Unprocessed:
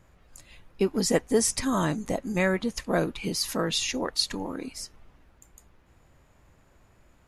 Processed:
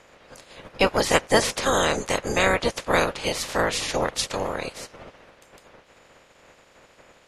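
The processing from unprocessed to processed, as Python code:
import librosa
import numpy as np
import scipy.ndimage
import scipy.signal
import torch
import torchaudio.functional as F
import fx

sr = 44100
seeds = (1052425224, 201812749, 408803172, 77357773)

p1 = fx.spec_clip(x, sr, under_db=28)
p2 = fx.peak_eq(p1, sr, hz=530.0, db=8.5, octaves=0.57)
p3 = 10.0 ** (-16.0 / 20.0) * np.tanh(p2 / 10.0 ** (-16.0 / 20.0))
p4 = p2 + (p3 * 10.0 ** (-10.0 / 20.0))
p5 = fx.air_absorb(p4, sr, metres=58.0)
y = p5 * 10.0 ** (1.5 / 20.0)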